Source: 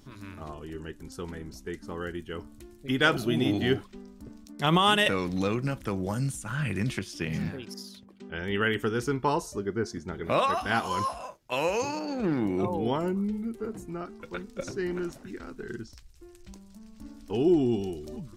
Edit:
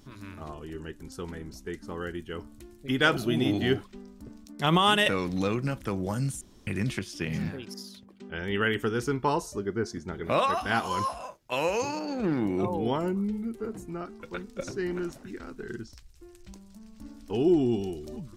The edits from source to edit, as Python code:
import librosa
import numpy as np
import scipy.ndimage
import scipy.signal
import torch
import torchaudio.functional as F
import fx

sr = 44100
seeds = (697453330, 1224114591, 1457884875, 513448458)

y = fx.edit(x, sr, fx.room_tone_fill(start_s=6.41, length_s=0.26), tone=tone)